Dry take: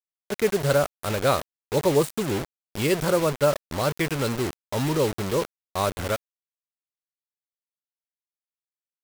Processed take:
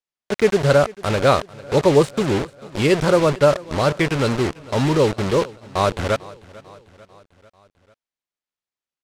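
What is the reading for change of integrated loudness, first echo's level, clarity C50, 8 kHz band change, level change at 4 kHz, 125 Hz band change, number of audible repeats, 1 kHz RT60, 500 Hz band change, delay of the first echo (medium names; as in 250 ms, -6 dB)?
+6.0 dB, -21.0 dB, no reverb, -0.5 dB, +4.5 dB, +6.5 dB, 3, no reverb, +6.5 dB, 445 ms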